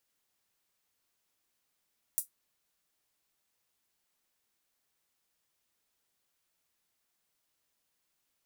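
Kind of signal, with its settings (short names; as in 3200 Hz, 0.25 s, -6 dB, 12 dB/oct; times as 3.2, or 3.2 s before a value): closed hi-hat, high-pass 9100 Hz, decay 0.13 s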